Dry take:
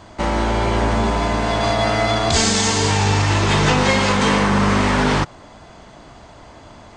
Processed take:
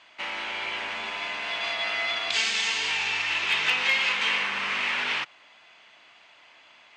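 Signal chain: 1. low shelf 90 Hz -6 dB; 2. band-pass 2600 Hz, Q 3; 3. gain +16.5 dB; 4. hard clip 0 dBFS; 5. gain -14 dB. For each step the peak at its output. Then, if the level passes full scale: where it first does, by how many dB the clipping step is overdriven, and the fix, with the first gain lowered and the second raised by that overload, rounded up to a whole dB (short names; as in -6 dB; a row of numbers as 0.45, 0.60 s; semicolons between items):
-4.5, -13.0, +3.5, 0.0, -14.0 dBFS; step 3, 3.5 dB; step 3 +12.5 dB, step 5 -10 dB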